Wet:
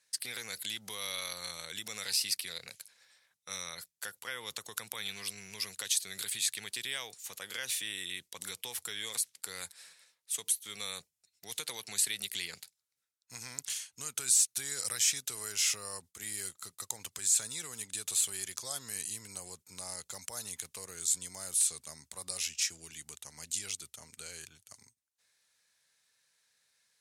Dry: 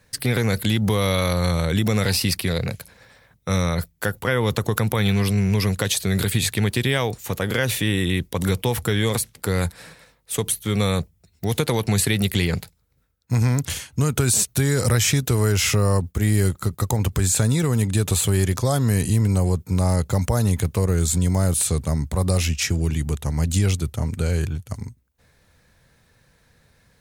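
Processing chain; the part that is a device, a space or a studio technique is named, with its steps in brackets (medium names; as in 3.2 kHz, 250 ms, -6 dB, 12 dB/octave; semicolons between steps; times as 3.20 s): piezo pickup straight into a mixer (low-pass 8.4 kHz 12 dB/octave; differentiator); trim -3 dB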